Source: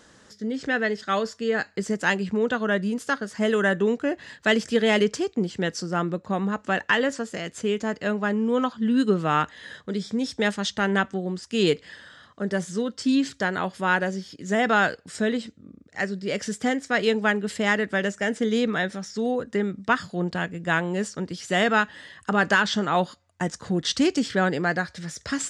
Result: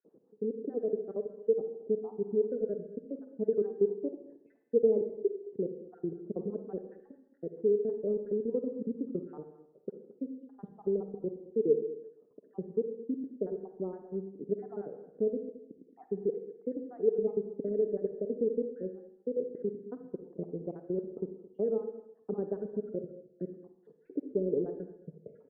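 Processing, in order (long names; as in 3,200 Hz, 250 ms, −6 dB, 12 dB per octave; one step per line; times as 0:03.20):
time-frequency cells dropped at random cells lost 59%
high-pass filter 160 Hz 24 dB per octave
transient designer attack +4 dB, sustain −9 dB
in parallel at −1 dB: compressor whose output falls as the input rises −29 dBFS, ratio −1
on the sum: transistor ladder low-pass 470 Hz, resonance 70%
single-tap delay 218 ms −18 dB
on a send at −7.5 dB: convolution reverb RT60 0.75 s, pre-delay 43 ms
on the sum: level −5.5 dB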